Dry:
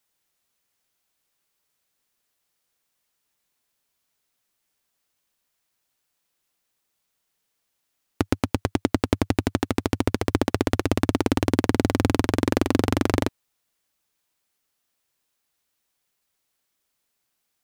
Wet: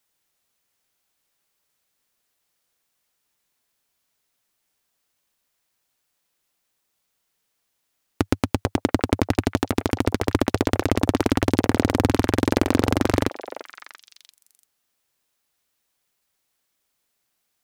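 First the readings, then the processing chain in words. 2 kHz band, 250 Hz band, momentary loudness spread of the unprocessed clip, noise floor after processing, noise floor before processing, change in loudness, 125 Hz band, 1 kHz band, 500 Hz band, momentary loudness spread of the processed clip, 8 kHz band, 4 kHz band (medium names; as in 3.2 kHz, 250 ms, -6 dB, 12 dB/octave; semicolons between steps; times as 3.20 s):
+2.0 dB, +1.5 dB, 4 LU, -75 dBFS, -77 dBFS, +1.5 dB, +1.5 dB, +2.0 dB, +2.0 dB, 6 LU, +1.5 dB, +1.5 dB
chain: repeats whose band climbs or falls 342 ms, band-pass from 650 Hz, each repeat 1.4 oct, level -7.5 dB; trim +1.5 dB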